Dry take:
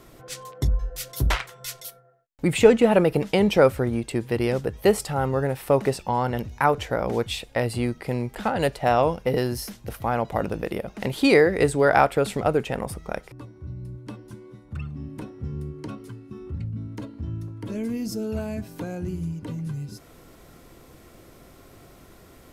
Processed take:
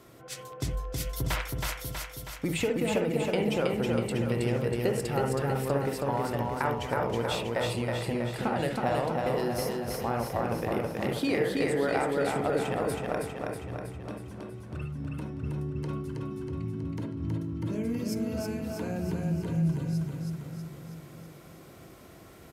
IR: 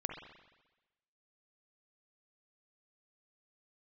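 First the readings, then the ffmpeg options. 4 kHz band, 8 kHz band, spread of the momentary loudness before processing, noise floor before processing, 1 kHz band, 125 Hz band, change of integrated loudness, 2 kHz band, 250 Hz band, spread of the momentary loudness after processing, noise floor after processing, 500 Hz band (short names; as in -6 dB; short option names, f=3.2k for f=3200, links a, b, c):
-4.5 dB, -3.5 dB, 19 LU, -51 dBFS, -6.5 dB, -2.5 dB, -6.5 dB, -6.5 dB, -4.5 dB, 13 LU, -50 dBFS, -7.0 dB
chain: -filter_complex "[0:a]highpass=68,acompressor=threshold=-23dB:ratio=6,aecho=1:1:321|642|963|1284|1605|1926|2247|2568:0.708|0.411|0.238|0.138|0.0801|0.0465|0.027|0.0156[a];[1:a]atrim=start_sample=2205,atrim=end_sample=3528[b];[a][b]afir=irnorm=-1:irlink=0,volume=-2.5dB"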